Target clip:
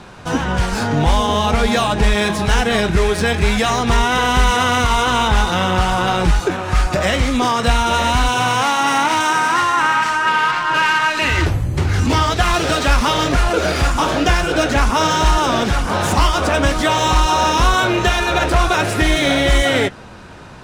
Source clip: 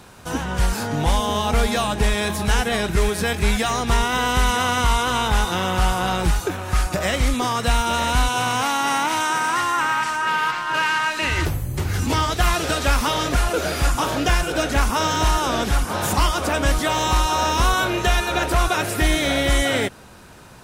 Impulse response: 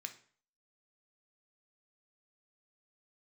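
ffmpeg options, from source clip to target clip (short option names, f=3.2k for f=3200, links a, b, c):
-filter_complex "[0:a]asplit=2[a][b];[b]alimiter=limit=-17.5dB:level=0:latency=1,volume=-1dB[c];[a][c]amix=inputs=2:normalize=0,flanger=delay=4.9:depth=8.6:regen=-57:speed=0.46:shape=triangular,adynamicsmooth=sensitivity=3:basefreq=5.6k,volume=6dB"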